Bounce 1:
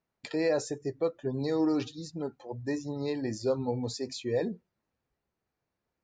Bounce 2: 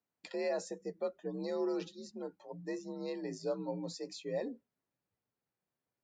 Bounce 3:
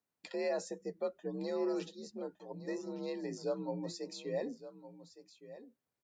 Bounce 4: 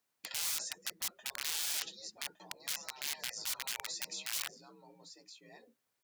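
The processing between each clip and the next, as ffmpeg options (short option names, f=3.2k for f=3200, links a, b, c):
-af "afreqshift=53,volume=-7.5dB"
-af "aecho=1:1:1163:0.188"
-af "aeval=exprs='(mod(44.7*val(0)+1,2)-1)/44.7':c=same,afftfilt=real='re*lt(hypot(re,im),0.0141)':imag='im*lt(hypot(re,im),0.0141)':win_size=1024:overlap=0.75,tiltshelf=f=660:g=-5.5,volume=3dB"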